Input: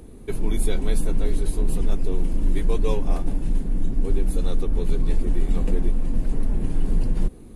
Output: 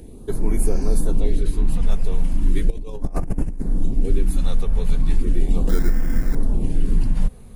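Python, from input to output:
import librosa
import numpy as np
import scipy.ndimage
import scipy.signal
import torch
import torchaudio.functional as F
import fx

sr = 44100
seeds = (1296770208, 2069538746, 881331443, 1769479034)

y = fx.spec_repair(x, sr, seeds[0], start_s=0.68, length_s=0.24, low_hz=1400.0, high_hz=6500.0, source='after')
y = fx.high_shelf(y, sr, hz=7200.0, db=-10.5, at=(1.2, 1.83))
y = fx.over_compress(y, sr, threshold_db=-24.0, ratio=-0.5, at=(2.7, 3.62))
y = fx.sample_hold(y, sr, seeds[1], rate_hz=1800.0, jitter_pct=0, at=(5.69, 6.35))
y = fx.filter_lfo_notch(y, sr, shape='sine', hz=0.37, low_hz=310.0, high_hz=3800.0, q=1.1)
y = y * 10.0 ** (3.0 / 20.0)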